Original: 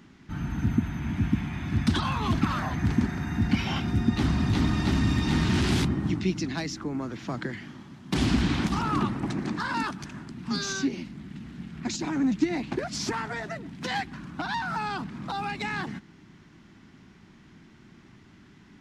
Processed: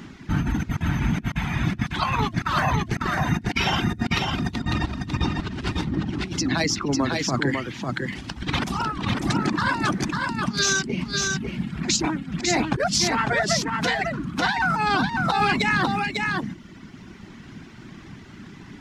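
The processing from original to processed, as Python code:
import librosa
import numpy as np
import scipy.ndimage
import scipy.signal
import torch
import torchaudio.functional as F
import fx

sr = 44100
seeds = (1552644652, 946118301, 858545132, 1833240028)

y = fx.dereverb_blind(x, sr, rt60_s=1.5)
y = fx.lowpass(y, sr, hz=2700.0, slope=6, at=(4.59, 6.25))
y = fx.over_compress(y, sr, threshold_db=-33.0, ratio=-0.5)
y = y + 10.0 ** (-3.5 / 20.0) * np.pad(y, (int(549 * sr / 1000.0), 0))[:len(y)]
y = y * librosa.db_to_amplitude(8.5)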